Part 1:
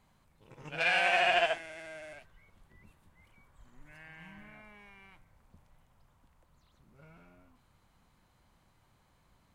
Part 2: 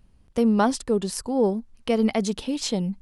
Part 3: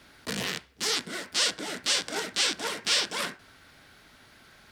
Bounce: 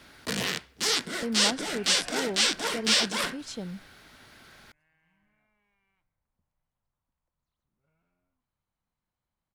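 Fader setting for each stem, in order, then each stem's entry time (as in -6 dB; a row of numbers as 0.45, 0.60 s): -20.0, -11.5, +2.0 dB; 0.85, 0.85, 0.00 s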